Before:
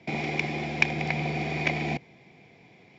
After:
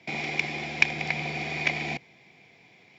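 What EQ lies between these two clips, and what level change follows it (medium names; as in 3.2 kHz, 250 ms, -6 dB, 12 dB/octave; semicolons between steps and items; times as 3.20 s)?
tilt shelf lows -5 dB; -1.5 dB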